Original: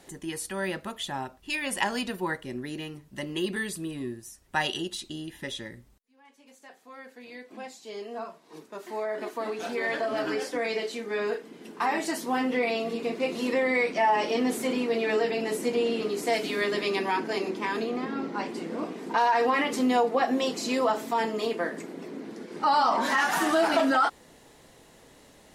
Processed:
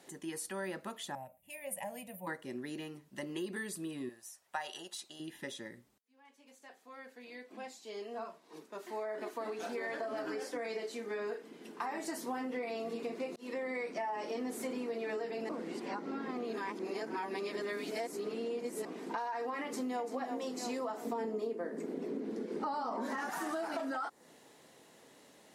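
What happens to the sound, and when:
1.15–2.27 EQ curve 170 Hz 0 dB, 380 Hz -26 dB, 570 Hz +3 dB, 1400 Hz -24 dB, 2200 Hz -7 dB, 4600 Hz -25 dB, 12000 Hz +7 dB
4.09–5.2 resonant low shelf 460 Hz -11.5 dB, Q 1.5
13.36–13.89 fade in equal-power
15.49–18.85 reverse
19.64–20.11 echo throw 0.34 s, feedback 50%, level -6.5 dB
21.05–23.3 small resonant body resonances 230/420 Hz, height 11 dB, ringing for 20 ms
whole clip: HPF 180 Hz 12 dB/oct; dynamic EQ 3100 Hz, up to -7 dB, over -46 dBFS, Q 1.3; compressor, threshold -30 dBFS; gain -5 dB

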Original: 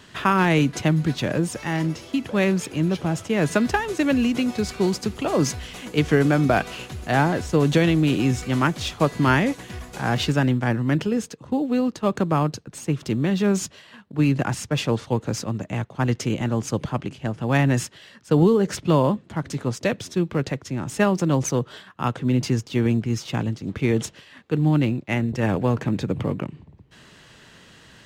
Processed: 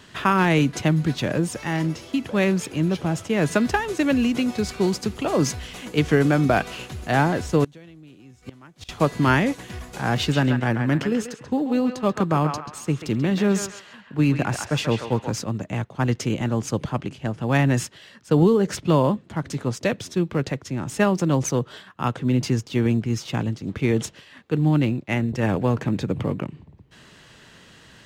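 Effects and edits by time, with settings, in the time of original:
7.64–8.89 flipped gate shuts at -19 dBFS, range -27 dB
10.18–15.34 narrowing echo 0.136 s, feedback 42%, band-pass 1500 Hz, level -4 dB

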